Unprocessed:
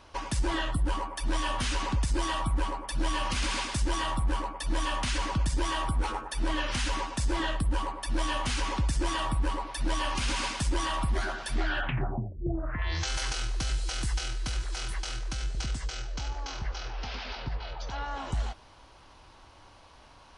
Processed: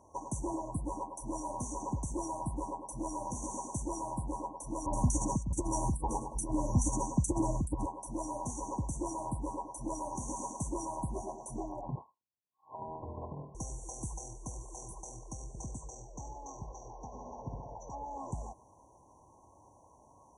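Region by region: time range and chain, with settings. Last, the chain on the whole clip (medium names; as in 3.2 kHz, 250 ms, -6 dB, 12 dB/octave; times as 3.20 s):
4.86–7.86 s: tone controls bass +13 dB, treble +6 dB + compressor with a negative ratio -18 dBFS, ratio -0.5 + bands offset in time lows, highs 70 ms, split 2.5 kHz
11.95–13.55 s: frequency inversion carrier 2.7 kHz + bass shelf 290 Hz +11 dB
17.06–17.78 s: treble shelf 4.9 kHz -7.5 dB + flutter echo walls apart 10.6 m, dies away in 0.93 s
whole clip: high-pass 89 Hz 12 dB/octave; FFT band-reject 1.1–5.7 kHz; trim -3.5 dB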